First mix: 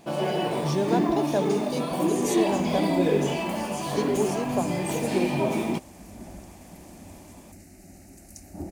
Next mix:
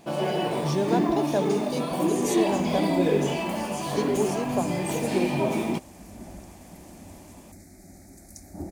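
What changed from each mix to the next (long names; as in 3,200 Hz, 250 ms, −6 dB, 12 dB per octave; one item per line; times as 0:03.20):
second sound: add Butterworth band-reject 2,800 Hz, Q 3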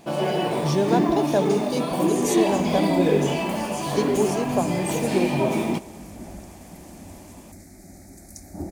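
reverb: on, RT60 2.3 s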